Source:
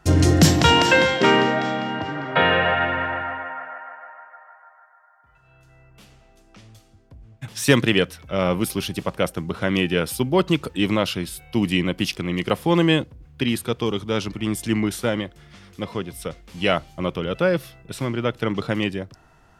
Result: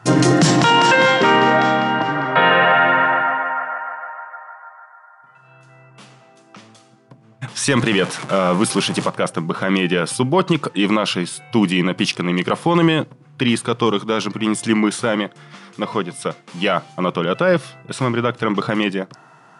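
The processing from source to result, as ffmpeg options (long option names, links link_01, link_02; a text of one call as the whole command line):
ffmpeg -i in.wav -filter_complex "[0:a]asettb=1/sr,asplit=3[link_01][link_02][link_03];[link_01]atrim=end=7.774[link_04];[link_02]atrim=start=7.77:end=9.09,asetpts=PTS-STARTPTS,afade=type=in:duration=0.004:curve=qsin,afade=type=out:start_time=1.316:duration=0.004:curve=qsin,aeval=exprs='val(0)+0.5*0.0316*sgn(val(0))':channel_layout=same[link_05];[link_03]atrim=start=9.086[link_06];[link_04][link_05]acrossfade=duration=0.004:curve1=hsin:curve2=qsin[link_07];[link_07][link_06]acrossfade=duration=0.004:curve1=qsin:curve2=hsin,afftfilt=real='re*between(b*sr/4096,110,11000)':imag='im*between(b*sr/4096,110,11000)':win_size=4096:overlap=0.75,equalizer=frequency=1100:width=1.3:gain=7,alimiter=limit=-10.5dB:level=0:latency=1:release=15,volume=5.5dB" out.wav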